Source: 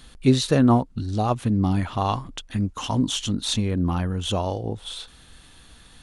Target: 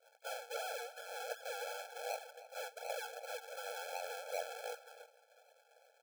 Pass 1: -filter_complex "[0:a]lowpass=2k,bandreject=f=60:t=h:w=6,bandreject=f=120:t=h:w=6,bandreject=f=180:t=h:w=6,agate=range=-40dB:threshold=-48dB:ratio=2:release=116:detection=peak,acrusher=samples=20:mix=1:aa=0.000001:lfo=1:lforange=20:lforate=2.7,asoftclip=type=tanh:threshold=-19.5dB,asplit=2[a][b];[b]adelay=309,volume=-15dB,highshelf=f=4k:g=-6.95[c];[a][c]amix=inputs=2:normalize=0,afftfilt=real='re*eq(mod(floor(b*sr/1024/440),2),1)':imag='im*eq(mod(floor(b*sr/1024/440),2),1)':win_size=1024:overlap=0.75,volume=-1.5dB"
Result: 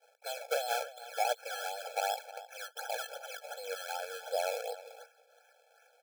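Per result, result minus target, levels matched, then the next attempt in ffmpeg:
decimation with a swept rate: distortion -7 dB; soft clip: distortion -6 dB
-filter_complex "[0:a]lowpass=2k,bandreject=f=60:t=h:w=6,bandreject=f=120:t=h:w=6,bandreject=f=180:t=h:w=6,agate=range=-40dB:threshold=-48dB:ratio=2:release=116:detection=peak,acrusher=samples=50:mix=1:aa=0.000001:lfo=1:lforange=50:lforate=2.7,asoftclip=type=tanh:threshold=-19.5dB,asplit=2[a][b];[b]adelay=309,volume=-15dB,highshelf=f=4k:g=-6.95[c];[a][c]amix=inputs=2:normalize=0,afftfilt=real='re*eq(mod(floor(b*sr/1024/440),2),1)':imag='im*eq(mod(floor(b*sr/1024/440),2),1)':win_size=1024:overlap=0.75,volume=-1.5dB"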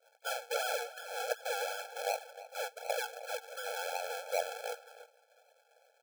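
soft clip: distortion -6 dB
-filter_complex "[0:a]lowpass=2k,bandreject=f=60:t=h:w=6,bandreject=f=120:t=h:w=6,bandreject=f=180:t=h:w=6,agate=range=-40dB:threshold=-48dB:ratio=2:release=116:detection=peak,acrusher=samples=50:mix=1:aa=0.000001:lfo=1:lforange=50:lforate=2.7,asoftclip=type=tanh:threshold=-30dB,asplit=2[a][b];[b]adelay=309,volume=-15dB,highshelf=f=4k:g=-6.95[c];[a][c]amix=inputs=2:normalize=0,afftfilt=real='re*eq(mod(floor(b*sr/1024/440),2),1)':imag='im*eq(mod(floor(b*sr/1024/440),2),1)':win_size=1024:overlap=0.75,volume=-1.5dB"

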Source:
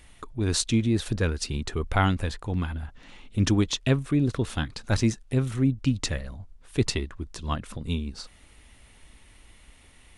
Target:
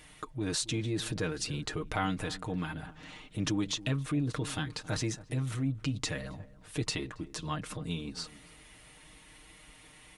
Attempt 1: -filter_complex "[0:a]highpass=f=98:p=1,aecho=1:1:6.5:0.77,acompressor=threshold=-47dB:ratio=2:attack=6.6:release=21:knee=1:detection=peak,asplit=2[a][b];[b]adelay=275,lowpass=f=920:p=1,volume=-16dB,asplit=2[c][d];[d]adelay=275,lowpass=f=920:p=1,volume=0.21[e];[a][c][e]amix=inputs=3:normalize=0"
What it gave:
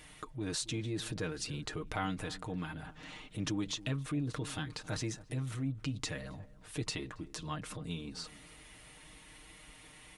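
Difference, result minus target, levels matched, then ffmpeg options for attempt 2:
compressor: peak gain reduction +4 dB
-filter_complex "[0:a]highpass=f=98:p=1,aecho=1:1:6.5:0.77,acompressor=threshold=-38.5dB:ratio=2:attack=6.6:release=21:knee=1:detection=peak,asplit=2[a][b];[b]adelay=275,lowpass=f=920:p=1,volume=-16dB,asplit=2[c][d];[d]adelay=275,lowpass=f=920:p=1,volume=0.21[e];[a][c][e]amix=inputs=3:normalize=0"

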